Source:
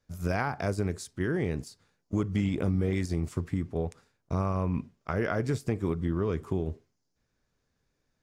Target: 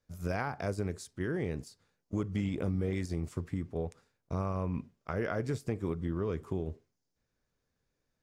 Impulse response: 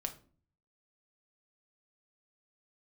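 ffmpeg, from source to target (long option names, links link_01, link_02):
-af "equalizer=frequency=510:width_type=o:width=0.45:gain=2.5,volume=-5dB"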